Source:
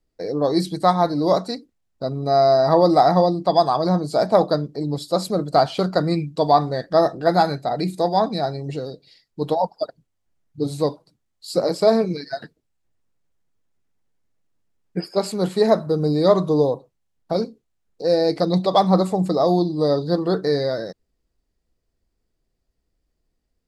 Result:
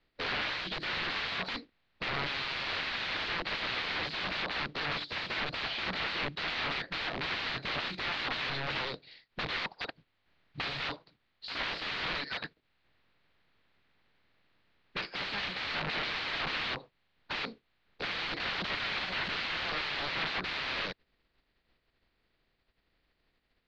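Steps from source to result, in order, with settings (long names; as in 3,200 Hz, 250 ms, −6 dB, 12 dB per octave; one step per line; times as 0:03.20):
compressing power law on the bin magnitudes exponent 0.65
brickwall limiter −10 dBFS, peak gain reduction 11.5 dB
wrap-around overflow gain 27 dB
elliptic low-pass filter 4,300 Hz, stop band 80 dB
parametric band 2,200 Hz +6.5 dB 1.7 octaves
level −3 dB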